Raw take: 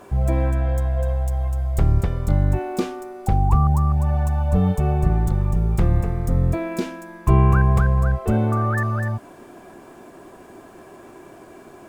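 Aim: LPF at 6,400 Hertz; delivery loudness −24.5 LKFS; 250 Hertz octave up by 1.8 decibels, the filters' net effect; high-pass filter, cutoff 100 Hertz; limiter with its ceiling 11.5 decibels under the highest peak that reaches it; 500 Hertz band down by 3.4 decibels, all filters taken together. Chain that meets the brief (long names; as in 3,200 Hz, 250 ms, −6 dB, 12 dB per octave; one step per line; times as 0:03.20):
high-pass filter 100 Hz
low-pass filter 6,400 Hz
parametric band 250 Hz +5 dB
parametric band 500 Hz −7 dB
level +3 dB
brickwall limiter −14.5 dBFS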